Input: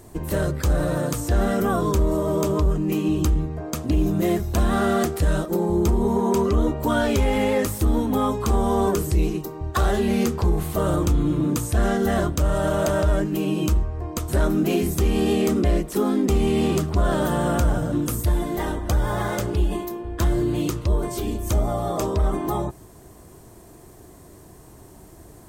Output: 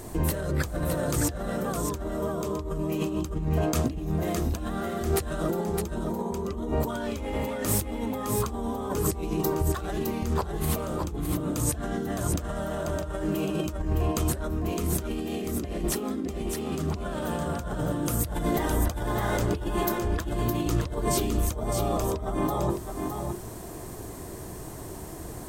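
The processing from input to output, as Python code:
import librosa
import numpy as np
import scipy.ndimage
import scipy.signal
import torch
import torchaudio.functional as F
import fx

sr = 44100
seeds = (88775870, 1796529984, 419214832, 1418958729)

y = fx.hum_notches(x, sr, base_hz=50, count=8)
y = fx.over_compress(y, sr, threshold_db=-30.0, ratio=-1.0)
y = y + 10.0 ** (-5.5 / 20.0) * np.pad(y, (int(612 * sr / 1000.0), 0))[:len(y)]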